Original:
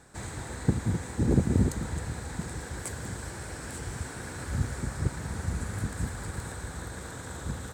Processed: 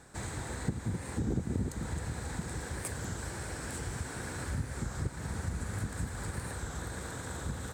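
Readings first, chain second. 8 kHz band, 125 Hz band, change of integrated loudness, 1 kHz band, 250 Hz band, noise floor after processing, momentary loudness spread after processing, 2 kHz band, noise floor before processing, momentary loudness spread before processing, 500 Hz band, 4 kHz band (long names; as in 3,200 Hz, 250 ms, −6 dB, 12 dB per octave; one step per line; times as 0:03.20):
−2.0 dB, −5.5 dB, −5.0 dB, −2.0 dB, −6.5 dB, −43 dBFS, 4 LU, −2.0 dB, −41 dBFS, 12 LU, −5.0 dB, −1.5 dB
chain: downward compressor 2.5 to 1, threshold −33 dBFS, peak gain reduction 11 dB
wow of a warped record 33 1/3 rpm, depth 100 cents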